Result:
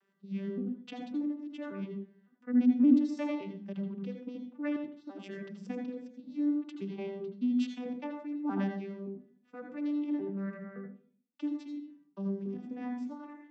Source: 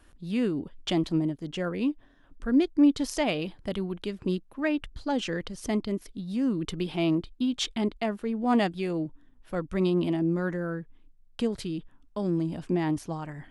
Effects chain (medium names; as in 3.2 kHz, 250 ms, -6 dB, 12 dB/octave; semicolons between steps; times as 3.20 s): vocoder on a broken chord major triad, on G3, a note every 566 ms; 4.76–5.24 s: compression 5:1, threshold -36 dBFS, peak gain reduction 11 dB; reverberation RT60 0.45 s, pre-delay 75 ms, DRR 4.5 dB; trim -5.5 dB